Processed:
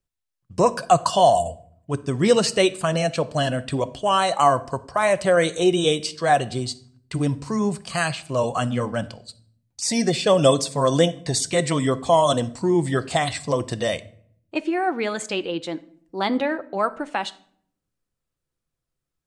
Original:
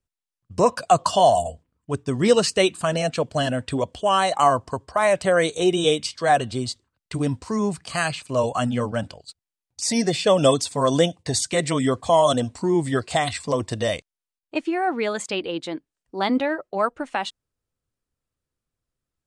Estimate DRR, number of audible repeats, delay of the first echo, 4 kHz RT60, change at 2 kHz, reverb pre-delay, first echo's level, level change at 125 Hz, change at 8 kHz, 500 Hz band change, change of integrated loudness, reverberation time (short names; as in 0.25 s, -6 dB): 12.0 dB, none, none, 0.40 s, 0.0 dB, 5 ms, none, +1.5 dB, 0.0 dB, 0.0 dB, +0.5 dB, 0.60 s